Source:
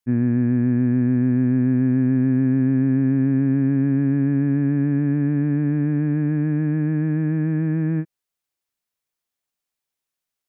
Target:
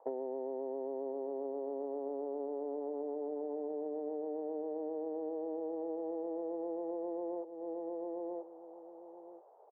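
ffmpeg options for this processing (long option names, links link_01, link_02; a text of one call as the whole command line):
ffmpeg -i in.wav -filter_complex "[0:a]asetrate=47628,aresample=44100,asplit=2[link_01][link_02];[link_02]acrusher=bits=4:mix=0:aa=0.000001,volume=-11.5dB[link_03];[link_01][link_03]amix=inputs=2:normalize=0,acompressor=mode=upward:threshold=-36dB:ratio=2.5,asuperpass=centerf=610:order=8:qfactor=1.3,aecho=1:1:982|1964:0.168|0.0319,acompressor=threshold=-50dB:ratio=12,volume=14dB" out.wav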